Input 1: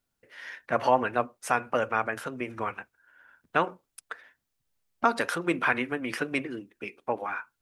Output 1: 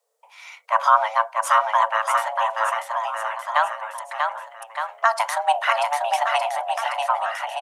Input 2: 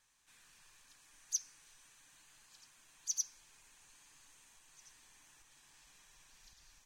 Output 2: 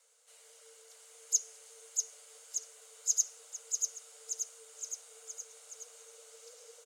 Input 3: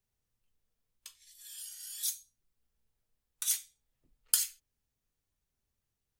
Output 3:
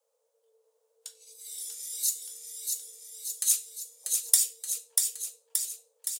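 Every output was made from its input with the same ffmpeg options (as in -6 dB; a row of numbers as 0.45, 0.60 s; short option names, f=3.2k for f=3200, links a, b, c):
-af "afreqshift=440,equalizer=f=250:t=o:w=1:g=-10,equalizer=f=500:t=o:w=1:g=8,equalizer=f=1k:t=o:w=1:g=6,equalizer=f=2k:t=o:w=1:g=-5,equalizer=f=8k:t=o:w=1:g=7,aecho=1:1:640|1216|1734|2201|2621:0.631|0.398|0.251|0.158|0.1,volume=2dB"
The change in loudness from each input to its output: +7.0, +3.5, +4.5 LU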